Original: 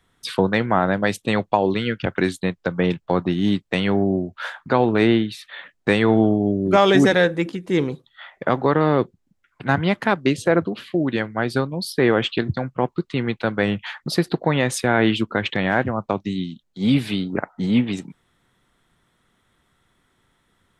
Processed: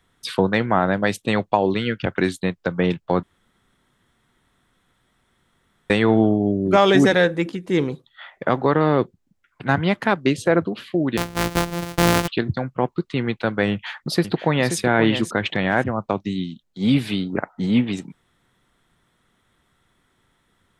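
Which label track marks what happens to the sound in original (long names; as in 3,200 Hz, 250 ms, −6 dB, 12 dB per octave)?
3.230000	5.900000	fill with room tone
11.170000	12.280000	samples sorted by size in blocks of 256 samples
13.710000	14.770000	delay throw 530 ms, feedback 15%, level −9 dB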